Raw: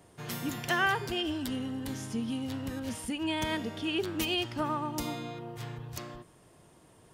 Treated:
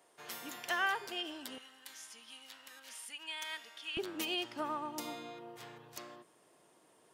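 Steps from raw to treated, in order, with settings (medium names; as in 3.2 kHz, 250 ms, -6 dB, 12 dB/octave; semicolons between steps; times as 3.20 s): high-pass 500 Hz 12 dB/octave, from 1.58 s 1.4 kHz, from 3.97 s 320 Hz; trim -5 dB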